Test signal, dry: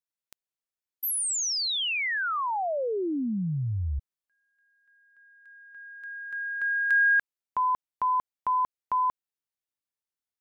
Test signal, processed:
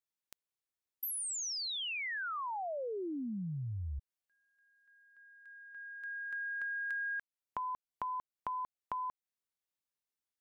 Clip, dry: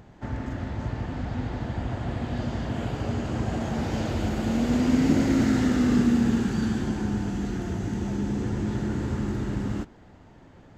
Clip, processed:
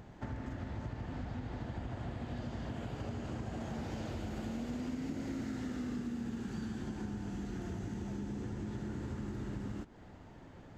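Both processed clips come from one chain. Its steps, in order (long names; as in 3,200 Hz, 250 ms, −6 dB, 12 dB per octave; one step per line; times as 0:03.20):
downward compressor 6 to 1, threshold −35 dBFS
level −2.5 dB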